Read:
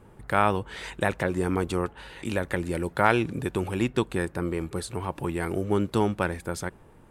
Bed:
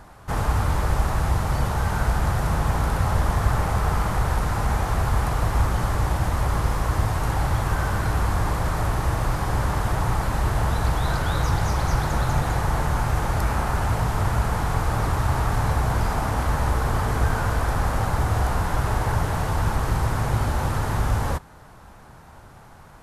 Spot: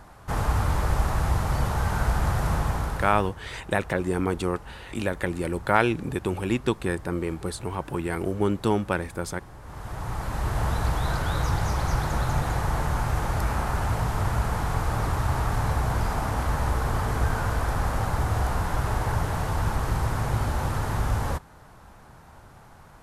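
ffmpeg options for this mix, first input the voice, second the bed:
-filter_complex "[0:a]adelay=2700,volume=1.06[s0];[1:a]volume=7.08,afade=t=out:st=2.53:d=0.82:silence=0.1,afade=t=in:st=9.62:d=1.05:silence=0.112202[s1];[s0][s1]amix=inputs=2:normalize=0"

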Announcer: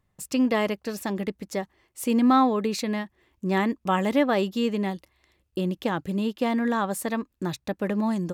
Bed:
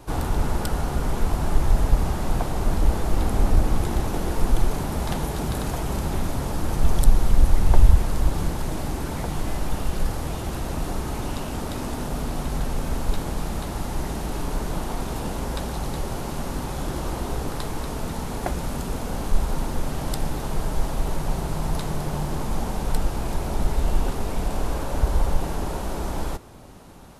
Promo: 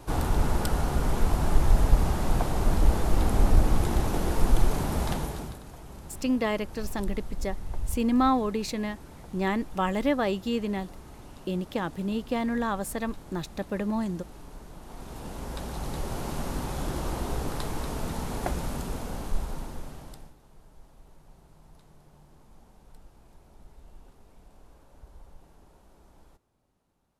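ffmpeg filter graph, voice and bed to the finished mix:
-filter_complex "[0:a]adelay=5900,volume=0.668[s0];[1:a]volume=4.73,afade=t=out:st=5.01:d=0.58:silence=0.149624,afade=t=in:st=14.8:d=1.49:silence=0.177828,afade=t=out:st=18.5:d=1.85:silence=0.0501187[s1];[s0][s1]amix=inputs=2:normalize=0"

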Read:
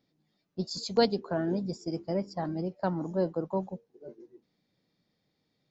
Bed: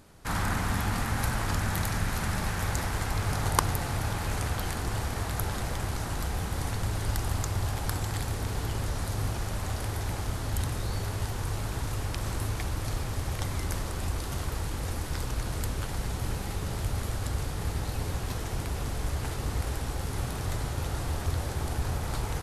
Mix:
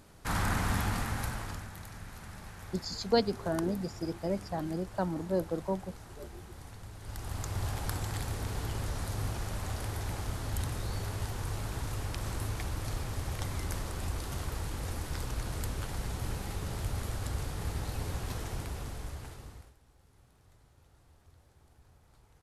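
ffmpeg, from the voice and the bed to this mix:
-filter_complex "[0:a]adelay=2150,volume=0.794[s0];[1:a]volume=3.55,afade=t=out:st=0.75:d=0.95:silence=0.177828,afade=t=in:st=7:d=0.65:silence=0.237137,afade=t=out:st=18.41:d=1.33:silence=0.0446684[s1];[s0][s1]amix=inputs=2:normalize=0"

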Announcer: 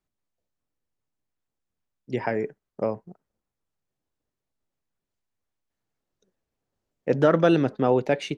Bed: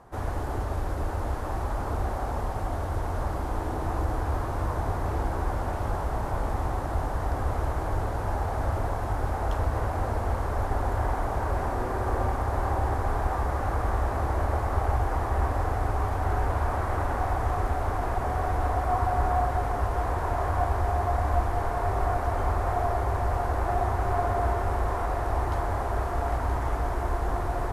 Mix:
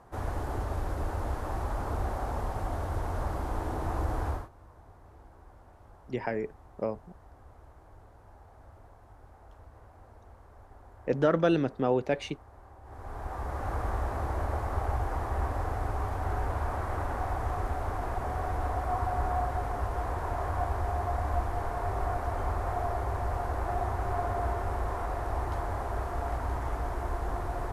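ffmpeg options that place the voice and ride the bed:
-filter_complex "[0:a]adelay=4000,volume=0.531[s0];[1:a]volume=7.5,afade=t=out:st=4.28:d=0.21:silence=0.0749894,afade=t=in:st=12.83:d=0.91:silence=0.0944061[s1];[s0][s1]amix=inputs=2:normalize=0"

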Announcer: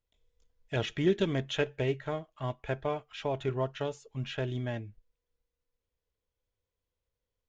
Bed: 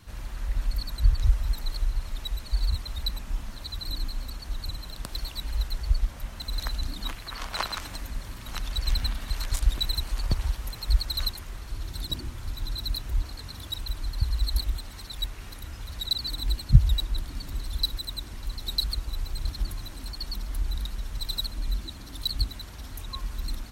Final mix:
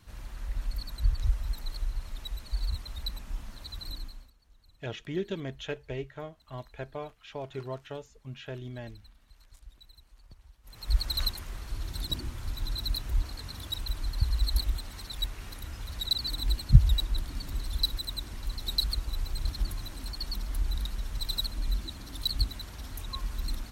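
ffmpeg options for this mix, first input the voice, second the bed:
-filter_complex "[0:a]adelay=4100,volume=0.501[s0];[1:a]volume=11.2,afade=t=out:st=3.86:d=0.46:silence=0.0794328,afade=t=in:st=10.63:d=0.42:silence=0.0473151[s1];[s0][s1]amix=inputs=2:normalize=0"

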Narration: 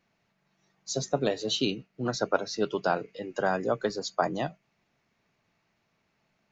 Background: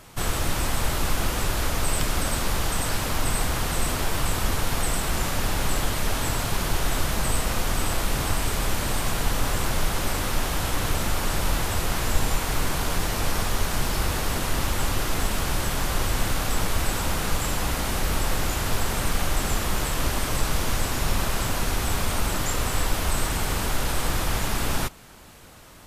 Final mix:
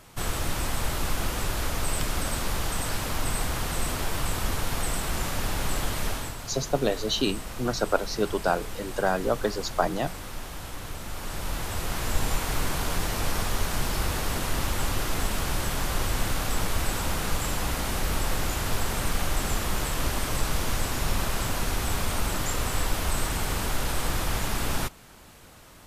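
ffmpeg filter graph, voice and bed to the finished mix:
-filter_complex "[0:a]adelay=5600,volume=1.26[s0];[1:a]volume=2,afade=t=out:st=6.06:d=0.29:silence=0.375837,afade=t=in:st=11.02:d=1.32:silence=0.334965[s1];[s0][s1]amix=inputs=2:normalize=0"

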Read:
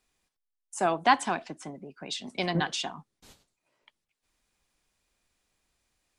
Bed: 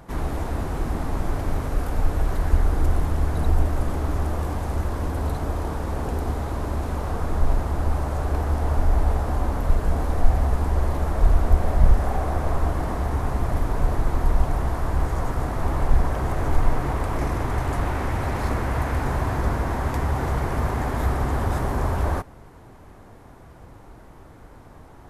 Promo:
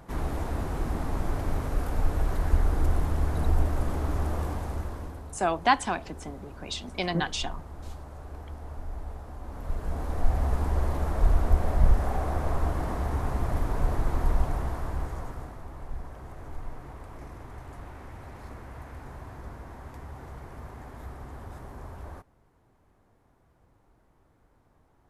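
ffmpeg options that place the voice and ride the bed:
-filter_complex "[0:a]adelay=4600,volume=1[s0];[1:a]volume=2.82,afade=t=out:st=4.41:d=0.85:silence=0.211349,afade=t=in:st=9.41:d=1.14:silence=0.223872,afade=t=out:st=14.31:d=1.34:silence=0.199526[s1];[s0][s1]amix=inputs=2:normalize=0"

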